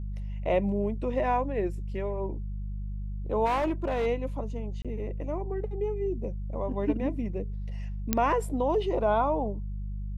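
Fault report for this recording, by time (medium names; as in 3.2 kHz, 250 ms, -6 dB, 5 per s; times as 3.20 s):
hum 50 Hz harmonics 4 -34 dBFS
3.45–4.07 s: clipped -23 dBFS
4.82–4.85 s: dropout 26 ms
8.13 s: pop -8 dBFS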